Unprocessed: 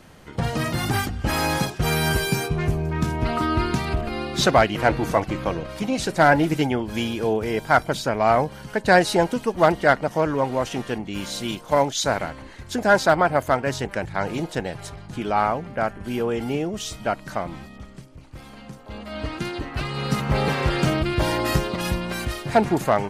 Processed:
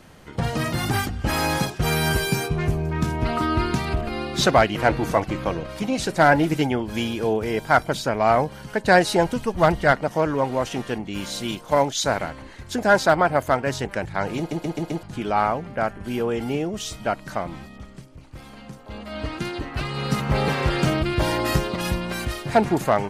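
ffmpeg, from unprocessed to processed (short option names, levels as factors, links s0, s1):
-filter_complex "[0:a]asplit=3[s0][s1][s2];[s0]afade=t=out:st=9.24:d=0.02[s3];[s1]asubboost=boost=3:cutoff=150,afade=t=in:st=9.24:d=0.02,afade=t=out:st=9.91:d=0.02[s4];[s2]afade=t=in:st=9.91:d=0.02[s5];[s3][s4][s5]amix=inputs=3:normalize=0,asplit=6[s6][s7][s8][s9][s10][s11];[s6]atrim=end=14.512[s12];[s7]atrim=start=14.378:end=14.512[s13];[s8]atrim=start=14.378:end=14.512[s14];[s9]atrim=start=14.378:end=14.512[s15];[s10]atrim=start=14.378:end=14.512[s16];[s11]atrim=start=15.028[s17];[s12][s13]acrossfade=d=0.004:c1=hsin:c2=hsin[s18];[s18][s14]acrossfade=d=0.004:c1=hsin:c2=hsin[s19];[s19][s15]acrossfade=d=0.004:c1=hsin:c2=hsin[s20];[s20][s16]acrossfade=d=0.004:c1=hsin:c2=hsin[s21];[s21][s17]acrossfade=d=0.004:c1=hsin:c2=hsin"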